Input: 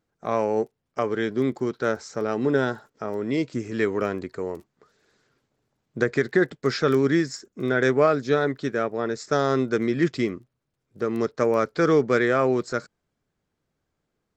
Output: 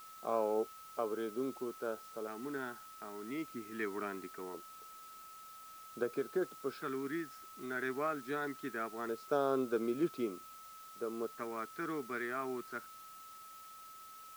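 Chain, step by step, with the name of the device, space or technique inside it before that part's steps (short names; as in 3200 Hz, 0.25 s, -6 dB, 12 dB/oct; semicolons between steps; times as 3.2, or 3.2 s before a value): shortwave radio (BPF 280–2600 Hz; tremolo 0.21 Hz, depth 48%; LFO notch square 0.22 Hz 520–1900 Hz; whine 1300 Hz -43 dBFS; white noise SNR 19 dB); gain -8.5 dB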